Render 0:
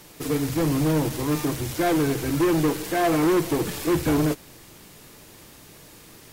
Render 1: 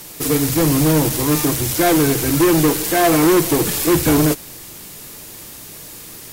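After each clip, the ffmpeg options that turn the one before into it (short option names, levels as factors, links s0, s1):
-af "aemphasis=mode=production:type=cd,volume=2.24"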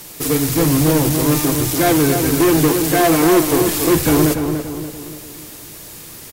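-filter_complex "[0:a]asplit=2[s0][s1];[s1]adelay=289,lowpass=f=1700:p=1,volume=0.501,asplit=2[s2][s3];[s3]adelay=289,lowpass=f=1700:p=1,volume=0.47,asplit=2[s4][s5];[s5]adelay=289,lowpass=f=1700:p=1,volume=0.47,asplit=2[s6][s7];[s7]adelay=289,lowpass=f=1700:p=1,volume=0.47,asplit=2[s8][s9];[s9]adelay=289,lowpass=f=1700:p=1,volume=0.47,asplit=2[s10][s11];[s11]adelay=289,lowpass=f=1700:p=1,volume=0.47[s12];[s0][s2][s4][s6][s8][s10][s12]amix=inputs=7:normalize=0"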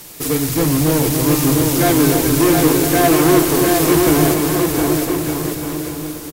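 -af "aecho=1:1:710|1207|1555|1798|1969:0.631|0.398|0.251|0.158|0.1,volume=0.891"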